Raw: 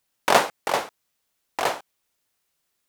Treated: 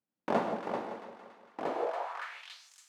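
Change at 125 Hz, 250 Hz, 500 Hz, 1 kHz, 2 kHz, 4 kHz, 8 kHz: −4.0 dB, −1.0 dB, −7.0 dB, −10.5 dB, −14.5 dB, −19.0 dB, below −20 dB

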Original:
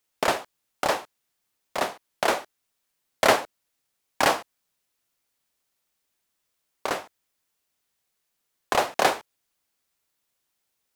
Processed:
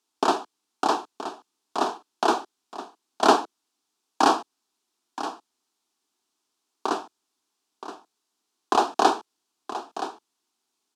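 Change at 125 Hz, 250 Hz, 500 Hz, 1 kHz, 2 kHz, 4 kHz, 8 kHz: can't be measured, +7.0 dB, −0.5 dB, +4.0 dB, −5.5 dB, −1.0 dB, −3.0 dB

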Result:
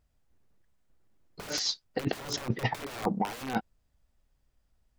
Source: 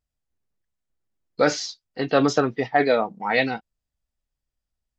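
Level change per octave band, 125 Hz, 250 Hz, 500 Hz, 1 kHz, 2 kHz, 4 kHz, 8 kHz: −2.5 dB, −9.5 dB, −16.0 dB, −10.0 dB, −13.0 dB, −2.5 dB, can't be measured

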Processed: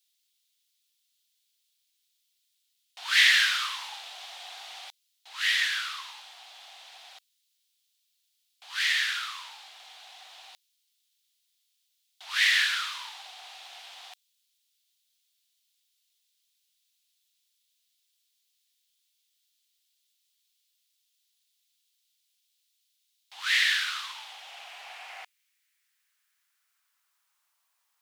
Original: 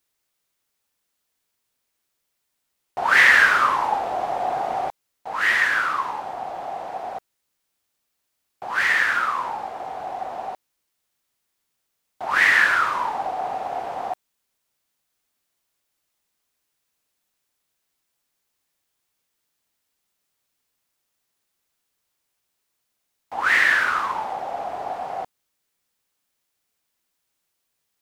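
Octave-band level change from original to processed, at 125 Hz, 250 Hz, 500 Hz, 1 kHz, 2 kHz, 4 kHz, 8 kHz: can't be measured, below −40 dB, below −25 dB, −19.5 dB, −9.0 dB, +6.0 dB, +2.0 dB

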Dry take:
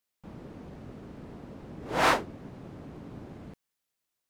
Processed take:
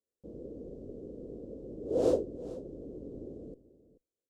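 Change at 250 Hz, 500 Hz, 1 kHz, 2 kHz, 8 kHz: +1.0 dB, +3.5 dB, −20.0 dB, below −30 dB, below −10 dB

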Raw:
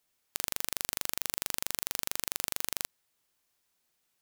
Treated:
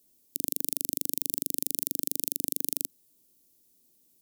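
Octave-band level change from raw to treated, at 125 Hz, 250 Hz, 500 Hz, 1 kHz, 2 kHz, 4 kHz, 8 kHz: +3.0 dB, +9.0 dB, +1.0 dB, below −10 dB, −14.5 dB, −5.0 dB, +2.0 dB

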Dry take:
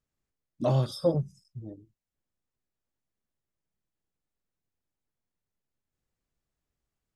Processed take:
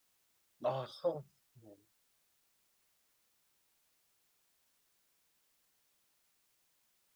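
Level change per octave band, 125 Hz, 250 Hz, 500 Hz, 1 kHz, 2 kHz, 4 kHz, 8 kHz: −21.5 dB, −18.5 dB, −8.5 dB, −5.0 dB, can't be measured, −10.5 dB, −12.5 dB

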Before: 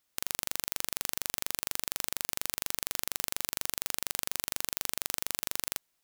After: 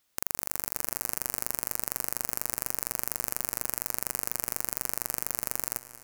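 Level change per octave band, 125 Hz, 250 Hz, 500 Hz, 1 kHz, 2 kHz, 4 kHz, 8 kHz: +5.0, +4.0, +4.0, +3.0, −1.0, −7.0, +1.5 decibels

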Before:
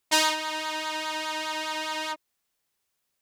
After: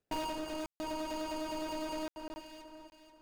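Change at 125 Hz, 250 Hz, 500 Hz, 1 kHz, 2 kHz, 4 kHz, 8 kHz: can't be measured, 0.0 dB, −4.0 dB, −10.5 dB, −18.5 dB, −17.0 dB, −17.5 dB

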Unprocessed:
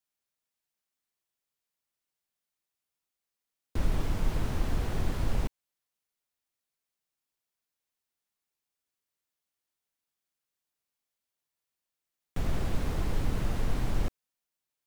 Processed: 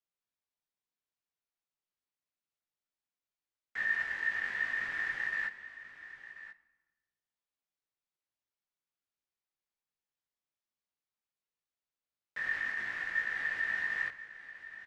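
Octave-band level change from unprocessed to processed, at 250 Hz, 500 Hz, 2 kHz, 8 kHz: −23.0 dB, −16.5 dB, +16.5 dB, below −10 dB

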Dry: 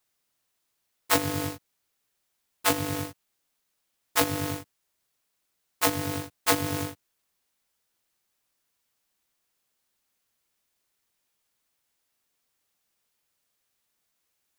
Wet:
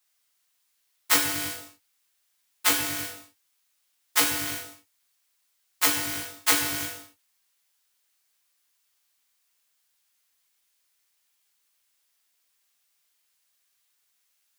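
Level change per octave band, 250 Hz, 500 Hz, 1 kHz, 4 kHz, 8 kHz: −5.0, −7.0, −2.0, +4.5, +5.5 decibels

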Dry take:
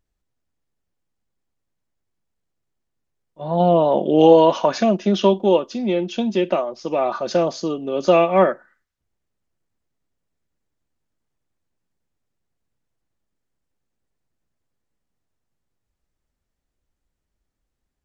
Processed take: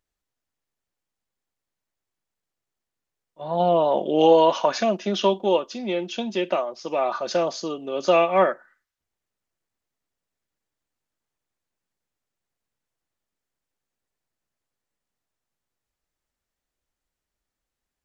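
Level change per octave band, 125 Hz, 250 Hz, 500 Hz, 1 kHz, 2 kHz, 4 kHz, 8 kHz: −9.0 dB, −7.0 dB, −4.0 dB, −2.0 dB, −0.5 dB, 0.0 dB, can't be measured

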